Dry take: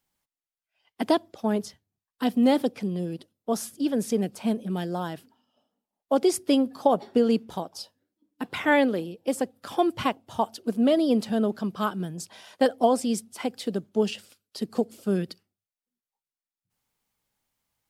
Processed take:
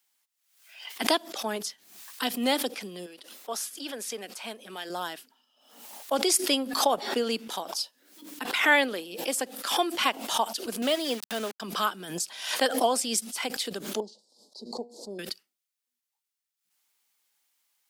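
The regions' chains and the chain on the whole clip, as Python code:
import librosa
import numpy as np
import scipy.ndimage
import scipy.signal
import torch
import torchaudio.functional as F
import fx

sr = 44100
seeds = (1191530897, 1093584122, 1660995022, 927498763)

y = fx.chain(x, sr, fx.highpass(hz=690.0, slope=6),
    fx.high_shelf(hz=3500.0, db=-7.0), at=(3.06, 4.9))
y = fx.chain(y, sr, fx.highpass(hz=230.0, slope=6),
    fx.transient(attack_db=1, sustain_db=-9),
    fx.sample_gate(floor_db=-36.5), at=(10.82, 11.6))
y = fx.chain(y, sr, fx.cheby1_bandstop(low_hz=940.0, high_hz=4100.0, order=4),
    fx.spacing_loss(db_at_10k=25),
    fx.comb_fb(f0_hz=120.0, decay_s=0.32, harmonics='all', damping=0.0, mix_pct=50), at=(14.0, 15.19))
y = scipy.signal.sosfilt(scipy.signal.butter(4, 220.0, 'highpass', fs=sr, output='sos'), y)
y = fx.tilt_shelf(y, sr, db=-9.0, hz=910.0)
y = fx.pre_swell(y, sr, db_per_s=80.0)
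y = F.gain(torch.from_numpy(y), -1.0).numpy()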